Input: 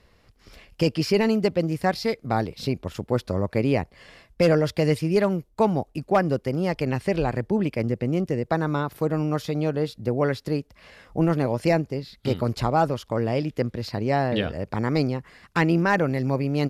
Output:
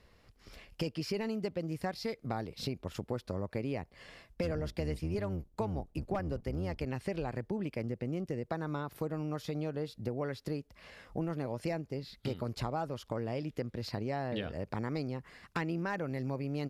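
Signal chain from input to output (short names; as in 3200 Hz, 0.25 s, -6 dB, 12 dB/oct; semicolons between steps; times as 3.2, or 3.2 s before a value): 4.43–6.85 octaver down 1 oct, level +1 dB; compressor 4:1, threshold -29 dBFS, peak gain reduction 13 dB; gain -4.5 dB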